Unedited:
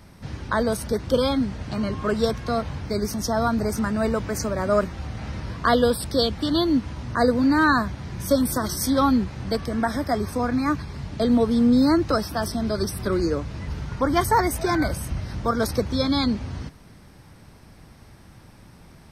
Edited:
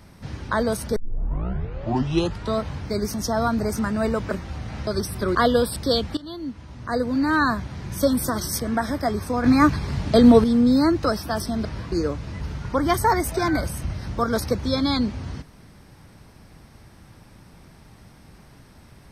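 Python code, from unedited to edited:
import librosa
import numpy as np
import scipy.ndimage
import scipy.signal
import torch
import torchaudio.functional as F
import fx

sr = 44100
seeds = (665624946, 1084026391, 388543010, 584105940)

y = fx.edit(x, sr, fx.tape_start(start_s=0.96, length_s=1.67),
    fx.cut(start_s=4.31, length_s=0.49),
    fx.swap(start_s=5.36, length_s=0.27, other_s=12.71, other_length_s=0.48),
    fx.fade_in_from(start_s=6.45, length_s=1.51, floor_db=-19.0),
    fx.cut(start_s=8.87, length_s=0.78),
    fx.clip_gain(start_s=10.5, length_s=1.0, db=7.0), tone=tone)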